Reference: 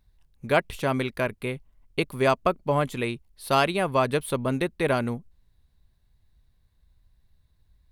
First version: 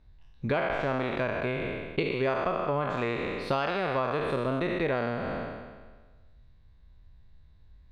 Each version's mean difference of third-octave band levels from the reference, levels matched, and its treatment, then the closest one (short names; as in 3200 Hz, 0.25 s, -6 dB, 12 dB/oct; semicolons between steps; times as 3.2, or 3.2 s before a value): 9.5 dB: spectral trails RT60 1.39 s; compressor 6:1, threshold -29 dBFS, peak gain reduction 14.5 dB; air absorption 180 m; gain +4 dB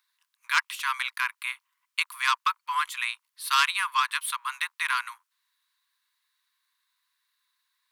17.5 dB: octaver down 2 oct, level +3 dB; steep high-pass 970 Hz 96 dB/oct; core saturation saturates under 3000 Hz; gain +5 dB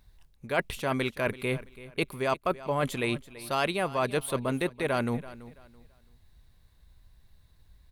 4.5 dB: low shelf 360 Hz -4 dB; reverse; compressor 4:1, threshold -35 dBFS, peak gain reduction 15.5 dB; reverse; feedback echo 0.333 s, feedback 27%, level -17 dB; gain +8 dB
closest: third